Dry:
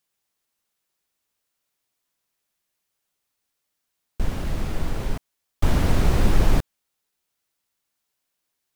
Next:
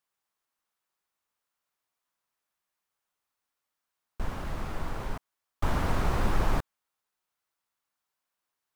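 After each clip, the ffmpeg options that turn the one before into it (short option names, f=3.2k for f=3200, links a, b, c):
-af "equalizer=f=1.1k:w=0.86:g=9.5,volume=-9dB"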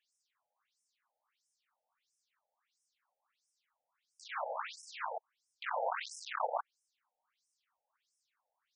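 -af "asoftclip=type=tanh:threshold=-26.5dB,acompressor=threshold=-31dB:ratio=6,afftfilt=real='re*between(b*sr/1024,610*pow(7300/610,0.5+0.5*sin(2*PI*1.5*pts/sr))/1.41,610*pow(7300/610,0.5+0.5*sin(2*PI*1.5*pts/sr))*1.41)':imag='im*between(b*sr/1024,610*pow(7300/610,0.5+0.5*sin(2*PI*1.5*pts/sr))/1.41,610*pow(7300/610,0.5+0.5*sin(2*PI*1.5*pts/sr))*1.41)':win_size=1024:overlap=0.75,volume=10dB"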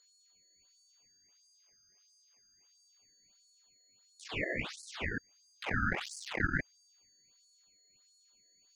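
-filter_complex "[0:a]aeval=exprs='val(0)+0.000355*sin(2*PI*5600*n/s)':c=same,acrossover=split=1300[a][b];[b]asoftclip=type=tanh:threshold=-38.5dB[c];[a][c]amix=inputs=2:normalize=0,aeval=exprs='val(0)*sin(2*PI*1000*n/s+1000*0.25/0.25*sin(2*PI*0.25*n/s))':c=same,volume=6.5dB"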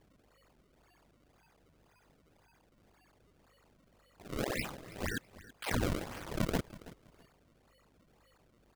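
-af "aeval=exprs='val(0)+0.000251*(sin(2*PI*50*n/s)+sin(2*PI*2*50*n/s)/2+sin(2*PI*3*50*n/s)/3+sin(2*PI*4*50*n/s)/4+sin(2*PI*5*50*n/s)/5)':c=same,acrusher=samples=30:mix=1:aa=0.000001:lfo=1:lforange=48:lforate=1.9,aecho=1:1:327|654:0.126|0.0302"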